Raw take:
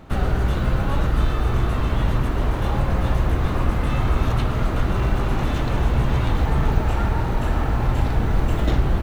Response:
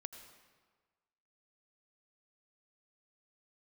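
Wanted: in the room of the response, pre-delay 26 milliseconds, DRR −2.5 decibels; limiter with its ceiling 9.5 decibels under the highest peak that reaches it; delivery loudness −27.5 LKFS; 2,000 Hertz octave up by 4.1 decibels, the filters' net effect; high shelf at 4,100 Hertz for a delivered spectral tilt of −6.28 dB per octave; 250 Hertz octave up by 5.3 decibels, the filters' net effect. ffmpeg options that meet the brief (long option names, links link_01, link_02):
-filter_complex "[0:a]equalizer=frequency=250:width_type=o:gain=7,equalizer=frequency=2000:width_type=o:gain=4,highshelf=frequency=4100:gain=6,alimiter=limit=-14dB:level=0:latency=1,asplit=2[link_01][link_02];[1:a]atrim=start_sample=2205,adelay=26[link_03];[link_02][link_03]afir=irnorm=-1:irlink=0,volume=6.5dB[link_04];[link_01][link_04]amix=inputs=2:normalize=0,volume=-8dB"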